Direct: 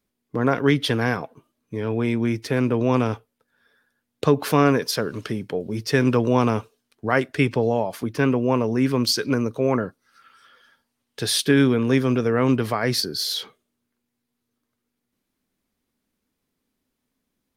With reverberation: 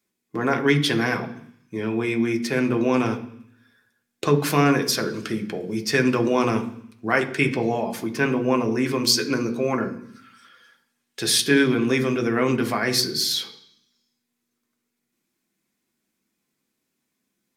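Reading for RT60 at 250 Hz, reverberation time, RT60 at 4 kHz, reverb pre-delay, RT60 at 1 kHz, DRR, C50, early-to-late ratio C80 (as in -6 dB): 0.85 s, 0.65 s, 0.85 s, 3 ms, 0.70 s, 4.0 dB, 13.0 dB, 16.0 dB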